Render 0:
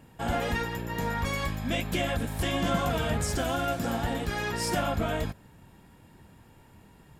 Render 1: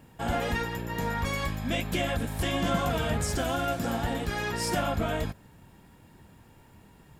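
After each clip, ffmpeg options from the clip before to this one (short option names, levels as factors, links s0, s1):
-af "acrusher=bits=11:mix=0:aa=0.000001"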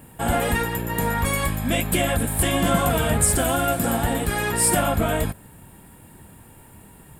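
-af "highshelf=f=7300:t=q:w=3:g=7.5,volume=2.24"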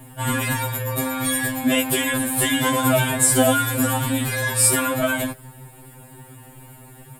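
-af "afftfilt=real='re*2.45*eq(mod(b,6),0)':imag='im*2.45*eq(mod(b,6),0)':win_size=2048:overlap=0.75,volume=2"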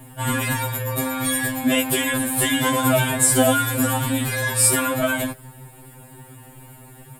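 -af anull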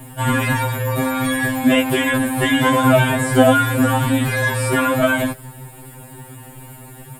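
-filter_complex "[0:a]acrossover=split=2900[s0][s1];[s1]acompressor=threshold=0.0158:ratio=4:attack=1:release=60[s2];[s0][s2]amix=inputs=2:normalize=0,volume=1.88"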